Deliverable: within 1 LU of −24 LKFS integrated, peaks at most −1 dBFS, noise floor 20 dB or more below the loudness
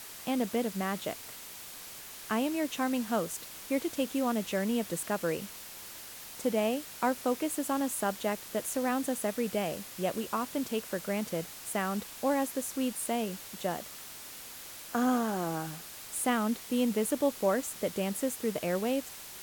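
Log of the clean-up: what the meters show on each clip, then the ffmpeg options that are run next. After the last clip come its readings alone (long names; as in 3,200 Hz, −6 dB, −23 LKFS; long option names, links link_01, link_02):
background noise floor −46 dBFS; target noise floor −53 dBFS; integrated loudness −32.5 LKFS; sample peak −16.0 dBFS; target loudness −24.0 LKFS
→ -af "afftdn=noise_reduction=7:noise_floor=-46"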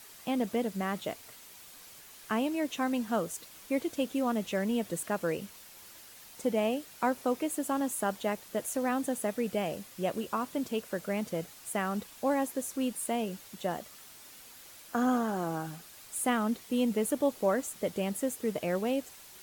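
background noise floor −52 dBFS; target noise floor −53 dBFS
→ -af "afftdn=noise_reduction=6:noise_floor=-52"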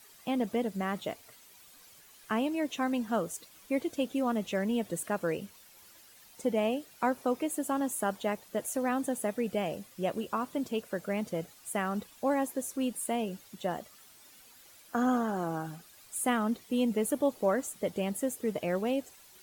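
background noise floor −57 dBFS; integrated loudness −32.5 LKFS; sample peak −16.0 dBFS; target loudness −24.0 LKFS
→ -af "volume=8.5dB"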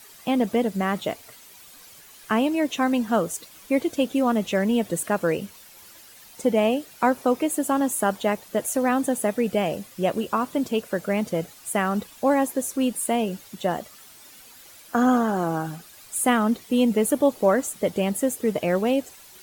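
integrated loudness −24.0 LKFS; sample peak −7.5 dBFS; background noise floor −48 dBFS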